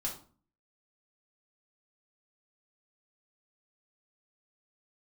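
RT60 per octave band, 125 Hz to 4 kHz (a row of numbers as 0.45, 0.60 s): 0.60, 0.60, 0.45, 0.40, 0.30, 0.30 s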